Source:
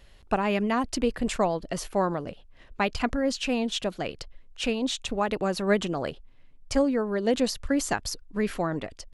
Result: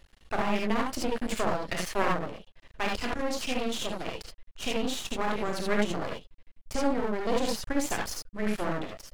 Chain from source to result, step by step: 1.55–2.1 bell 2000 Hz +13.5 dB 1.3 oct; non-linear reverb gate 0.1 s rising, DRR -1 dB; half-wave rectifier; gain -2 dB

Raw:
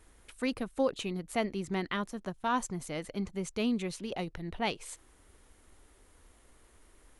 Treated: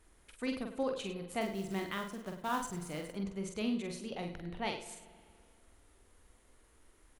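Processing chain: 1.41–3.14 short-mantissa float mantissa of 2-bit; on a send: tapped delay 46/101/103 ms -5/-16.5/-13.5 dB; on the sum: spring tank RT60 2.1 s, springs 40/46 ms, chirp 25 ms, DRR 14 dB; gain -5.5 dB

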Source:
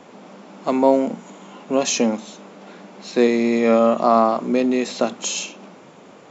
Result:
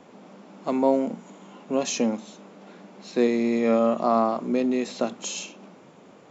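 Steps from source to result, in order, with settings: low shelf 460 Hz +4 dB; gain -7.5 dB

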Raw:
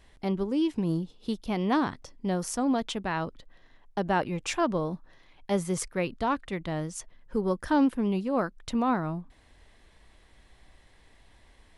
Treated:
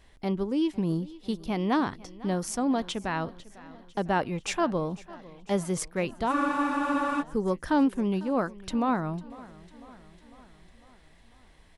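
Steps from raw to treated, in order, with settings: feedback echo 0.5 s, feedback 59%, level -20 dB; spectral freeze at 6.35, 0.85 s

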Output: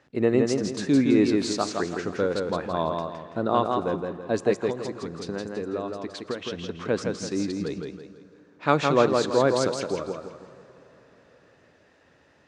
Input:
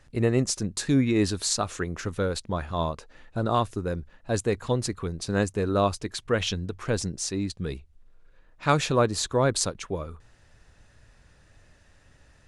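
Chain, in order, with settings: HPF 280 Hz 12 dB/oct; low shelf 440 Hz +8 dB; 4.53–6.74 compressor 10:1, threshold -28 dBFS, peak gain reduction 13.5 dB; air absorption 110 m; plate-style reverb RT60 4.3 s, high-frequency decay 0.6×, DRR 18 dB; warbling echo 0.165 s, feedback 37%, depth 64 cents, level -4 dB

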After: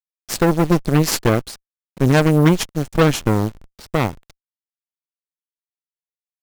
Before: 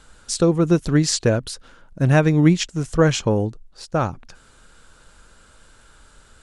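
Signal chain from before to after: level-crossing sampler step -33 dBFS; added harmonics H 7 -26 dB, 8 -15 dB, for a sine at -2.5 dBFS; gain +1 dB

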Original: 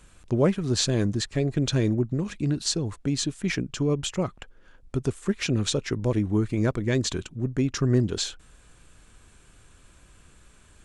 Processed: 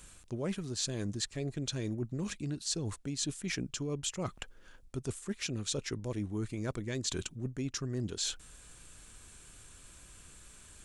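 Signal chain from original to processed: high shelf 4000 Hz +11.5 dB; reverse; compressor 6:1, threshold -30 dBFS, peak gain reduction 15 dB; reverse; gain -3 dB

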